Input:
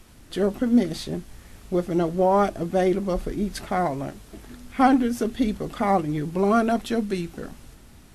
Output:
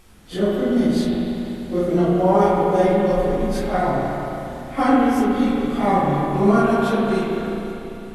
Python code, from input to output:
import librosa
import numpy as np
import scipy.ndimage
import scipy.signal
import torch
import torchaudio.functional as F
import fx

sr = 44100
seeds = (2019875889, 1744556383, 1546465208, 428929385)

y = fx.phase_scramble(x, sr, seeds[0], window_ms=100)
y = fx.rev_spring(y, sr, rt60_s=3.2, pass_ms=(34, 49), chirp_ms=20, drr_db=-3.0)